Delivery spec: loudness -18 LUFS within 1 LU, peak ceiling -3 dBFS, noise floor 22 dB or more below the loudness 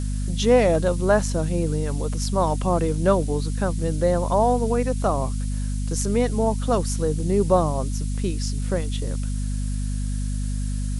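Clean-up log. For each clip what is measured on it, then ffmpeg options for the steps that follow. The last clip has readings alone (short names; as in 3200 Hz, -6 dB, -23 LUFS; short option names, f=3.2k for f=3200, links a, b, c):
hum 50 Hz; harmonics up to 250 Hz; hum level -23 dBFS; noise floor -26 dBFS; noise floor target -46 dBFS; loudness -23.5 LUFS; peak -6.0 dBFS; loudness target -18.0 LUFS
-> -af "bandreject=f=50:t=h:w=6,bandreject=f=100:t=h:w=6,bandreject=f=150:t=h:w=6,bandreject=f=200:t=h:w=6,bandreject=f=250:t=h:w=6"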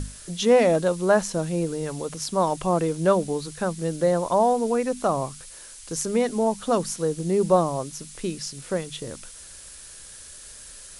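hum none; noise floor -44 dBFS; noise floor target -46 dBFS
-> -af "afftdn=nr=6:nf=-44"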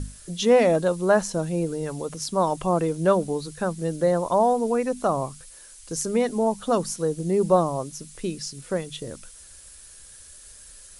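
noise floor -47 dBFS; loudness -24.0 LUFS; peak -7.5 dBFS; loudness target -18.0 LUFS
-> -af "volume=6dB,alimiter=limit=-3dB:level=0:latency=1"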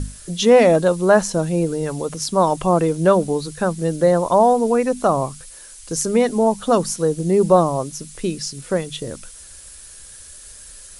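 loudness -18.0 LUFS; peak -3.0 dBFS; noise floor -41 dBFS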